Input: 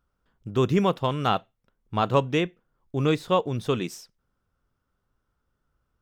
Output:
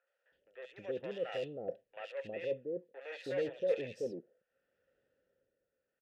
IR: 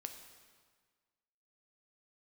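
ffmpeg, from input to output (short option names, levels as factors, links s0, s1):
-filter_complex "[0:a]areverse,acompressor=threshold=0.0398:ratio=16,areverse,tremolo=f=0.62:d=0.71,asoftclip=type=hard:threshold=0.0133,asplit=3[s0][s1][s2];[s0]bandpass=f=530:t=q:w=8,volume=1[s3];[s1]bandpass=f=1840:t=q:w=8,volume=0.501[s4];[s2]bandpass=f=2480:t=q:w=8,volume=0.355[s5];[s3][s4][s5]amix=inputs=3:normalize=0,acrossover=split=640|2600[s6][s7][s8];[s8]adelay=70[s9];[s6]adelay=320[s10];[s10][s7][s9]amix=inputs=3:normalize=0,volume=7.5"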